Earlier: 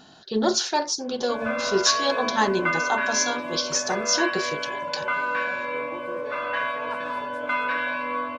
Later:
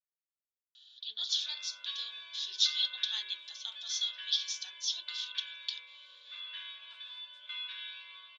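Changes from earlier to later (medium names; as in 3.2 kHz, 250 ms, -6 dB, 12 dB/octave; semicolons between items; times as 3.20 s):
speech: entry +0.75 s; master: add ladder band-pass 3.6 kHz, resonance 85%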